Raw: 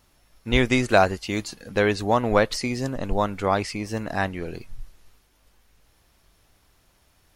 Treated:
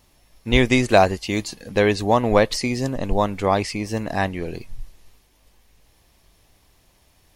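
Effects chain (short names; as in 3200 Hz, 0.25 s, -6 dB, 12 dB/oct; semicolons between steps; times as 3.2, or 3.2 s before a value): bell 1400 Hz -8.5 dB 0.32 oct; gain +3.5 dB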